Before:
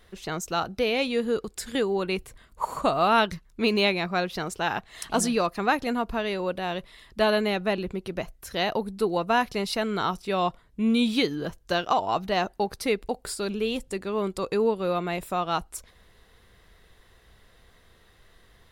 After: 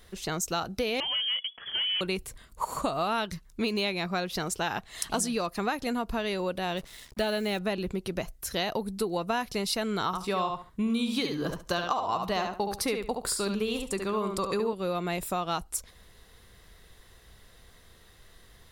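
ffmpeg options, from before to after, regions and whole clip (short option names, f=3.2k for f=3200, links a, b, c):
-filter_complex "[0:a]asettb=1/sr,asplit=3[a][b][c];[a]atrim=end=1.004[d];[b]atrim=start=1:end=2.01,asetpts=PTS-STARTPTS,afade=t=in:d=0.004:c=qsin,afade=t=out:st=1.006:d=0.004:c=qsin,asoftclip=type=hard:threshold=-26dB,lowpass=f=2.9k:t=q:w=0.5098,lowpass=f=2.9k:t=q:w=0.6013,lowpass=f=2.9k:t=q:w=0.9,lowpass=f=2.9k:t=q:w=2.563,afreqshift=-3400[e];[c]atrim=start=2.006[f];[d][e]acrossfade=d=0.004:c1=hsin:c2=qsin[g];[g][f]acrossfade=d=0.004:c1=qsin:c2=hsin,asettb=1/sr,asplit=3[h][i][j];[h]atrim=end=6.774[k];[i]atrim=start=6.77:end=7.59,asetpts=PTS-STARTPTS,afade=t=in:d=0.004:c=qsin,afade=t=out:st=0.816:d=0.004:c=qsin,bandreject=f=1.1k:w=6.1,acrusher=bits=7:mix=0:aa=0.5[l];[j]atrim=start=7.586[m];[k][l]acrossfade=d=0.004:c1=hsin:c2=qsin[n];[n][m]acrossfade=d=0.004:c1=qsin:c2=hsin,asettb=1/sr,asplit=3[o][p][q];[o]atrim=end=10.064[r];[p]atrim=start=10.06:end=14.73,asetpts=PTS-STARTPTS,afade=t=in:d=0.004:c=qsin,afade=t=out:st=4.666:d=0.004:c=qsin,equalizer=f=1.1k:w=2.9:g=7,asplit=2[s][t];[t]adelay=70,lowpass=f=4.8k:p=1,volume=-5.5dB,asplit=2[u][v];[v]adelay=70,lowpass=f=4.8k:p=1,volume=0.17,asplit=2[w][x];[x]adelay=70,lowpass=f=4.8k:p=1,volume=0.17[y];[s][u][w][y]amix=inputs=4:normalize=0,atrim=end_sample=205947[z];[q]atrim=start=14.726[aa];[r][z]acrossfade=d=0.004:c1=hsin:c2=qsin[ab];[ab][aa]acrossfade=d=0.004:c1=qsin:c2=hsin,bass=f=250:g=2,treble=f=4k:g=7,acompressor=threshold=-26dB:ratio=5"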